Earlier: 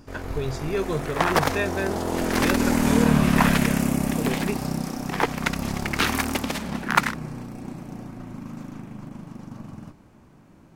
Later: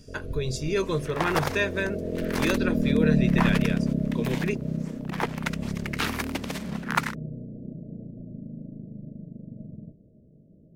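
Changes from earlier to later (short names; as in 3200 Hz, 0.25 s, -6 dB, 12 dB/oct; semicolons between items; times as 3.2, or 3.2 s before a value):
speech: add high shelf 3500 Hz +8.5 dB; first sound: add rippled Chebyshev low-pass 650 Hz, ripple 6 dB; second sound -5.5 dB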